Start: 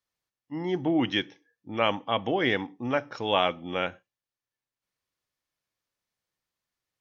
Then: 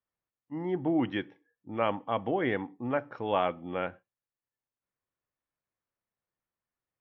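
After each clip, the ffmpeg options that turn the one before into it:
-af "lowpass=1.7k,volume=-2.5dB"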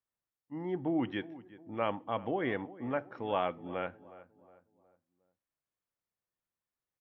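-filter_complex "[0:a]asplit=2[a][b];[b]adelay=363,lowpass=f=1.5k:p=1,volume=-17dB,asplit=2[c][d];[d]adelay=363,lowpass=f=1.5k:p=1,volume=0.44,asplit=2[e][f];[f]adelay=363,lowpass=f=1.5k:p=1,volume=0.44,asplit=2[g][h];[h]adelay=363,lowpass=f=1.5k:p=1,volume=0.44[i];[a][c][e][g][i]amix=inputs=5:normalize=0,volume=-4dB"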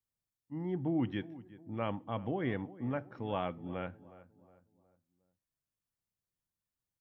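-af "bass=f=250:g=12,treble=f=4k:g=5,volume=-5dB"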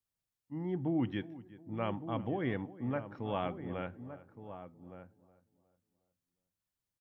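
-filter_complex "[0:a]asplit=2[a][b];[b]adelay=1166,volume=-11dB,highshelf=f=4k:g=-26.2[c];[a][c]amix=inputs=2:normalize=0"

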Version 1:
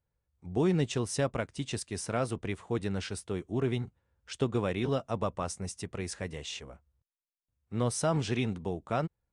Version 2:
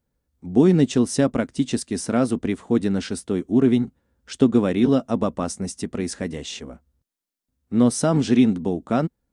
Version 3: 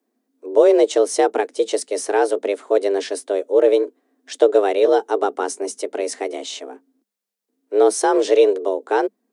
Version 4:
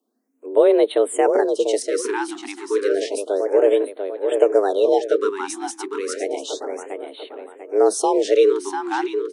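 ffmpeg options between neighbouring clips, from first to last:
-af "equalizer=f=100:t=o:w=0.67:g=-7,equalizer=f=250:t=o:w=0.67:g=12,equalizer=f=1k:t=o:w=0.67:g=-3,equalizer=f=2.5k:t=o:w=0.67:g=-4,volume=7.5dB"
-af "afreqshift=200,volume=2.5dB"
-filter_complex "[0:a]asplit=2[a][b];[b]adelay=694,lowpass=f=4.8k:p=1,volume=-5.5dB,asplit=2[c][d];[d]adelay=694,lowpass=f=4.8k:p=1,volume=0.42,asplit=2[e][f];[f]adelay=694,lowpass=f=4.8k:p=1,volume=0.42,asplit=2[g][h];[h]adelay=694,lowpass=f=4.8k:p=1,volume=0.42,asplit=2[i][j];[j]adelay=694,lowpass=f=4.8k:p=1,volume=0.42[k];[c][e][g][i][k]amix=inputs=5:normalize=0[l];[a][l]amix=inputs=2:normalize=0,afftfilt=real='re*(1-between(b*sr/1024,510*pow(6300/510,0.5+0.5*sin(2*PI*0.31*pts/sr))/1.41,510*pow(6300/510,0.5+0.5*sin(2*PI*0.31*pts/sr))*1.41))':imag='im*(1-between(b*sr/1024,510*pow(6300/510,0.5+0.5*sin(2*PI*0.31*pts/sr))/1.41,510*pow(6300/510,0.5+0.5*sin(2*PI*0.31*pts/sr))*1.41))':win_size=1024:overlap=0.75,volume=-1.5dB"

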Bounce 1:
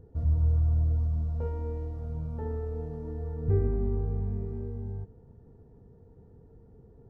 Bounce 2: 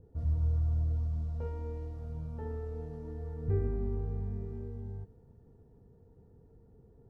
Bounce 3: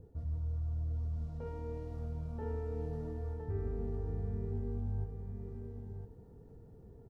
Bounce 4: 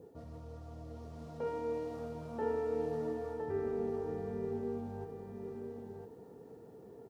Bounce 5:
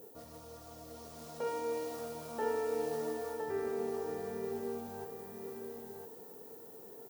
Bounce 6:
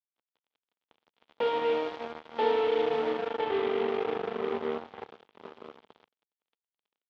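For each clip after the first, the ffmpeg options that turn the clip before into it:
-af "adynamicequalizer=threshold=0.00178:dfrequency=1600:dqfactor=0.7:tfrequency=1600:tqfactor=0.7:attack=5:release=100:ratio=0.375:range=3:mode=boostabove:tftype=highshelf,volume=-5dB"
-af "areverse,acompressor=threshold=-38dB:ratio=6,areverse,aecho=1:1:1010:0.531,volume=3.5dB"
-af "highpass=300,bandreject=f=1.5k:w=18,volume=9dB"
-af "aemphasis=mode=production:type=riaa,volume=3.5dB"
-af "acrusher=bits=5:mix=0:aa=0.5,highpass=150,equalizer=f=150:t=q:w=4:g=-6,equalizer=f=470:t=q:w=4:g=3,equalizer=f=870:t=q:w=4:g=4,equalizer=f=1.7k:t=q:w=4:g=-3,equalizer=f=3.3k:t=q:w=4:g=6,lowpass=f=3.6k:w=0.5412,lowpass=f=3.6k:w=1.3066,volume=5.5dB"

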